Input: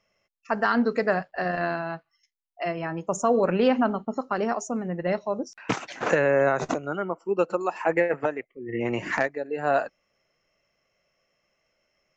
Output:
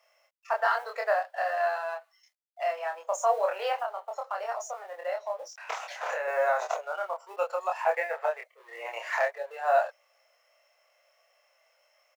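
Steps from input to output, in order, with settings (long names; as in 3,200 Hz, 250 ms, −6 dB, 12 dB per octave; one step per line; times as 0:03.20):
mu-law and A-law mismatch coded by mu
Butterworth high-pass 540 Hz 48 dB per octave
parametric band 750 Hz +4.5 dB 1.3 octaves
0:03.80–0:06.28: downward compressor, threshold −24 dBFS, peak gain reduction 8.5 dB
double-tracking delay 26 ms −2.5 dB
level −6.5 dB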